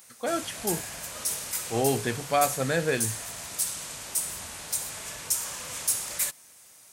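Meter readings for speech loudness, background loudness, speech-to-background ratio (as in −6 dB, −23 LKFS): −29.0 LKFS, −30.5 LKFS, 1.5 dB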